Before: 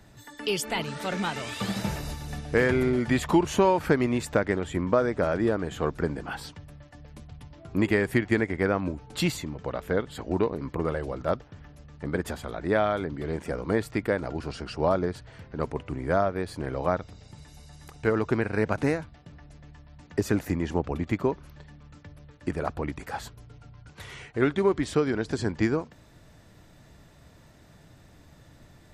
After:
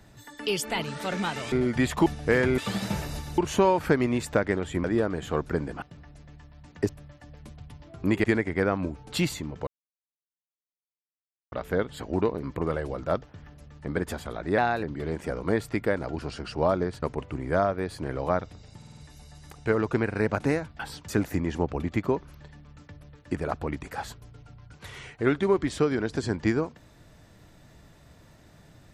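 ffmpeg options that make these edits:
ffmpeg -i in.wav -filter_complex "[0:a]asplit=19[link_01][link_02][link_03][link_04][link_05][link_06][link_07][link_08][link_09][link_10][link_11][link_12][link_13][link_14][link_15][link_16][link_17][link_18][link_19];[link_01]atrim=end=1.522[link_20];[link_02]atrim=start=2.838:end=3.382[link_21];[link_03]atrim=start=2.318:end=2.842[link_22];[link_04]atrim=start=1.518:end=2.322[link_23];[link_05]atrim=start=3.378:end=4.842[link_24];[link_06]atrim=start=5.328:end=6.312[link_25];[link_07]atrim=start=19.168:end=20.242[link_26];[link_08]atrim=start=6.598:end=7.952[link_27];[link_09]atrim=start=8.268:end=9.7,asetpts=PTS-STARTPTS,afade=type=out:start_time=1.428:duration=0.004:curve=hsin,apad=pad_dur=1.85[link_28];[link_10]atrim=start=9.7:end=12.764,asetpts=PTS-STARTPTS,afade=type=in:duration=0.004:curve=hsin[link_29];[link_11]atrim=start=12.76:end=13.05,asetpts=PTS-STARTPTS,asetrate=50274,aresample=44100,atrim=end_sample=11218,asetpts=PTS-STARTPTS[link_30];[link_12]atrim=start=13.046:end=15.242[link_31];[link_13]atrim=start=15.598:end=17.402[link_32];[link_14]atrim=start=17.348:end=17.402[link_33];[link_15]atrim=start=17.348:end=17.402[link_34];[link_16]atrim=start=17.348:end=17.402[link_35];[link_17]atrim=start=17.348:end=19.172[link_36];[link_18]atrim=start=6.308:end=6.602[link_37];[link_19]atrim=start=20.238[link_38];[link_20][link_21]acrossfade=duration=0.004:curve1=hsin:curve2=hsin[link_39];[link_39][link_22]acrossfade=duration=0.004:curve1=hsin:curve2=hsin[link_40];[link_40][link_23]acrossfade=duration=0.004:curve1=hsin:curve2=hsin[link_41];[link_41][link_24]acrossfade=duration=0.004:curve1=hsin:curve2=hsin[link_42];[link_42][link_25]acrossfade=duration=0.004:curve1=hsin:curve2=hsin[link_43];[link_43][link_26]acrossfade=duration=0.004:curve1=hsin:curve2=hsin[link_44];[link_44][link_27]acrossfade=duration=0.004:curve1=hsin:curve2=hsin[link_45];[link_28][link_29]concat=n=2:v=0:a=1[link_46];[link_45][link_46]acrossfade=duration=0.004:curve1=hsin:curve2=hsin[link_47];[link_47][link_30]acrossfade=duration=0.004:curve1=hsin:curve2=hsin[link_48];[link_48][link_31]acrossfade=duration=0.004:curve1=hsin:curve2=hsin[link_49];[link_49][link_32]acrossfade=duration=0.004:curve1=hsin:curve2=hsin[link_50];[link_50][link_33]acrossfade=duration=0.004:curve1=hsin:curve2=hsin[link_51];[link_51][link_34]acrossfade=duration=0.004:curve1=hsin:curve2=hsin[link_52];[link_52][link_35]acrossfade=duration=0.004:curve1=hsin:curve2=hsin[link_53];[link_53][link_36]acrossfade=duration=0.004:curve1=hsin:curve2=hsin[link_54];[link_54][link_37]acrossfade=duration=0.004:curve1=hsin:curve2=hsin[link_55];[link_55][link_38]acrossfade=duration=0.004:curve1=hsin:curve2=hsin" out.wav

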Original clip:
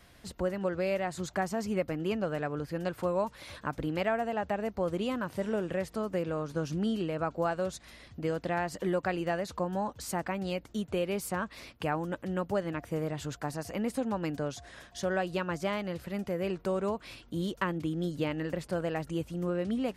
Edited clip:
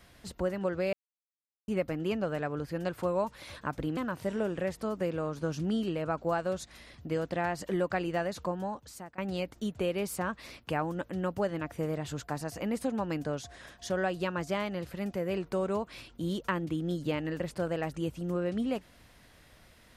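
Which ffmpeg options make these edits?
ffmpeg -i in.wav -filter_complex "[0:a]asplit=5[link_01][link_02][link_03][link_04][link_05];[link_01]atrim=end=0.93,asetpts=PTS-STARTPTS,afade=type=out:start_time=0.926:duration=0.004:curve=hsin[link_06];[link_02]atrim=start=0.93:end=1.68,asetpts=PTS-STARTPTS,volume=0[link_07];[link_03]atrim=start=1.68:end=3.972,asetpts=PTS-STARTPTS,afade=type=in:duration=0.004:curve=hsin[link_08];[link_04]atrim=start=5.098:end=10.31,asetpts=PTS-STARTPTS,afade=type=out:start_time=4.452:duration=0.76:silence=0.0749894[link_09];[link_05]atrim=start=10.31,asetpts=PTS-STARTPTS,afade=type=in:duration=0.004:curve=hsin:silence=0.0749894[link_10];[link_06][link_07][link_08]concat=n=3:v=0:a=1[link_11];[link_09][link_10]concat=n=2:v=0:a=1[link_12];[link_11][link_12]acrossfade=duration=0.004:curve1=hsin:curve2=hsin" out.wav

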